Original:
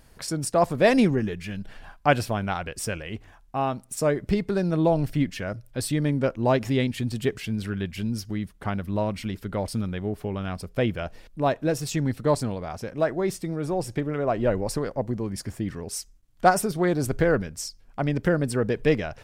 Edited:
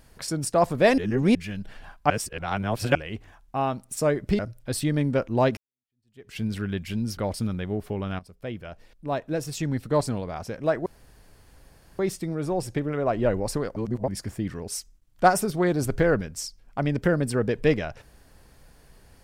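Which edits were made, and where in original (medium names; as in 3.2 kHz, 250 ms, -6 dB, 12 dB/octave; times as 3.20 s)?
0.98–1.35 s: reverse
2.10–2.95 s: reverse
4.39–5.47 s: delete
6.65–7.46 s: fade in exponential
8.25–9.51 s: delete
10.53–12.55 s: fade in, from -14.5 dB
13.20 s: insert room tone 1.13 s
14.97–15.29 s: reverse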